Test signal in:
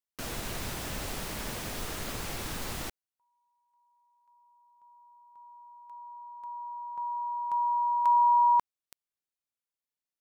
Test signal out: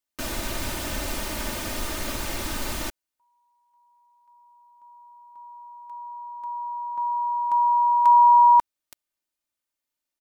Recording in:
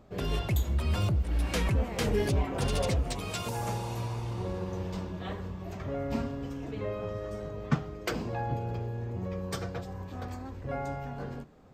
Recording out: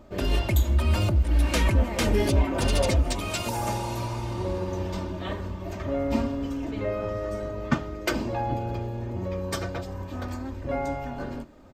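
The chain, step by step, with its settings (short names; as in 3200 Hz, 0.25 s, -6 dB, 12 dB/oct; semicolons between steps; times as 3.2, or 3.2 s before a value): comb 3.3 ms, depth 56%; gain +5 dB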